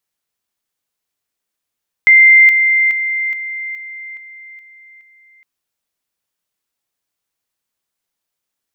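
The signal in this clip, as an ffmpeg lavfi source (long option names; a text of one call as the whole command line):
ffmpeg -f lavfi -i "aevalsrc='pow(10,(-3.5-6*floor(t/0.42))/20)*sin(2*PI*2090*t)':duration=3.36:sample_rate=44100" out.wav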